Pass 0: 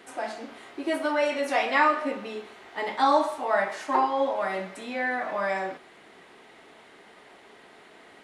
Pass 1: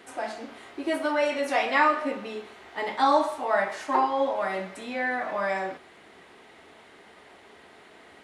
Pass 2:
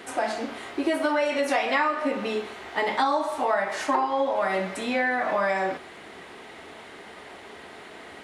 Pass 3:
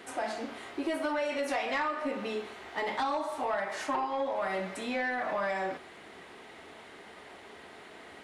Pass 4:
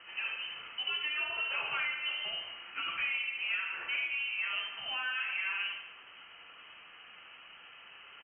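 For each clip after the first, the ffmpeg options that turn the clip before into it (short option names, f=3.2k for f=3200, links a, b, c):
-af "equalizer=f=78:t=o:w=0.59:g=9.5"
-af "acompressor=threshold=-29dB:ratio=6,volume=8dB"
-af "asoftclip=type=tanh:threshold=-17dB,volume=-6dB"
-filter_complex "[0:a]asplit=2[a][b];[b]aecho=0:1:73|146|219|292|365|438|511:0.422|0.24|0.137|0.0781|0.0445|0.0254|0.0145[c];[a][c]amix=inputs=2:normalize=0,flanger=delay=7.1:depth=5.9:regen=-55:speed=0.37:shape=triangular,lowpass=f=2.8k:t=q:w=0.5098,lowpass=f=2.8k:t=q:w=0.6013,lowpass=f=2.8k:t=q:w=0.9,lowpass=f=2.8k:t=q:w=2.563,afreqshift=-3300"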